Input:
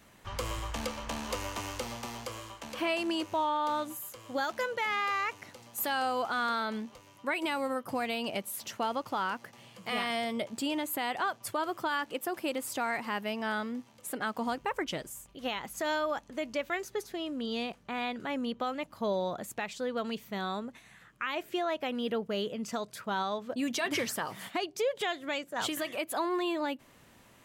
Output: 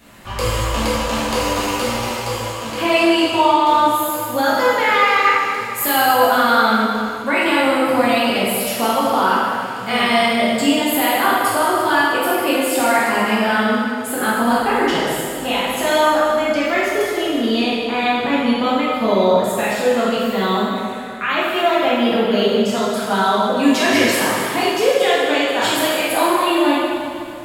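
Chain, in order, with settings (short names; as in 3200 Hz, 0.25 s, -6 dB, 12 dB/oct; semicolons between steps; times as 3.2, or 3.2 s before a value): notch 6000 Hz, Q 9.8; plate-style reverb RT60 2.3 s, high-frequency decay 0.85×, DRR -8.5 dB; gain +8 dB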